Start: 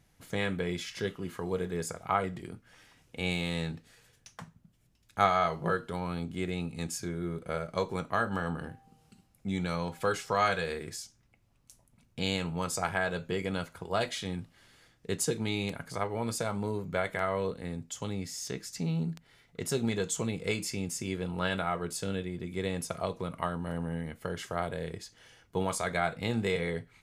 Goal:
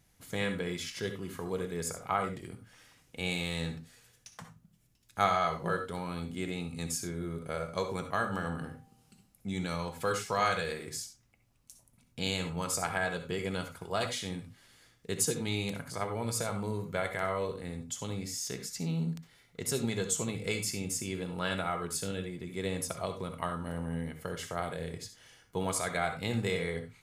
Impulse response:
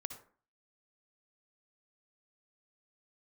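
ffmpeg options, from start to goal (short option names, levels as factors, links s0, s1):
-filter_complex "[0:a]highshelf=f=4700:g=7[s0];[1:a]atrim=start_sample=2205,afade=t=out:st=0.15:d=0.01,atrim=end_sample=7056[s1];[s0][s1]afir=irnorm=-1:irlink=0"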